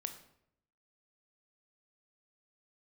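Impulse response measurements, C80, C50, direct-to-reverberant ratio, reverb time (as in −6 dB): 13.0 dB, 10.5 dB, 6.5 dB, 0.70 s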